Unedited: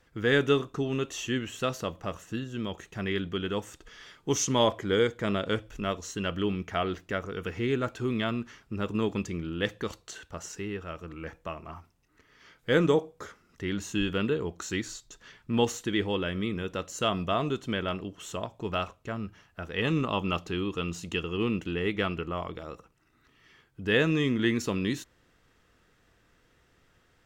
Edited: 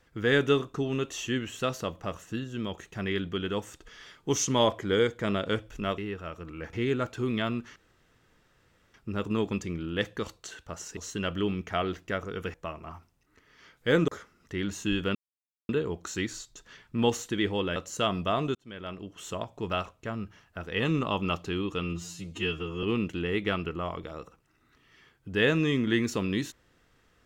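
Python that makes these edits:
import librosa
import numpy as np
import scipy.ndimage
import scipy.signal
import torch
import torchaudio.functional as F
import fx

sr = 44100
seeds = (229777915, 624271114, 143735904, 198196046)

y = fx.edit(x, sr, fx.swap(start_s=5.98, length_s=1.57, other_s=10.61, other_length_s=0.75),
    fx.insert_room_tone(at_s=8.58, length_s=1.18),
    fx.cut(start_s=12.9, length_s=0.27),
    fx.insert_silence(at_s=14.24, length_s=0.54),
    fx.cut(start_s=16.31, length_s=0.47),
    fx.fade_in_span(start_s=17.57, length_s=0.74),
    fx.stretch_span(start_s=20.85, length_s=0.5, factor=2.0), tone=tone)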